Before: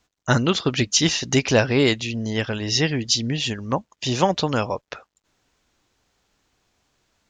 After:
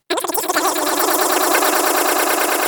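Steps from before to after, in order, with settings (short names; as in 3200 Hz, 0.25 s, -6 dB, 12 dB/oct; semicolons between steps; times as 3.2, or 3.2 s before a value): wide varispeed 2.73×; swelling echo 0.108 s, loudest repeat 8, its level -5 dB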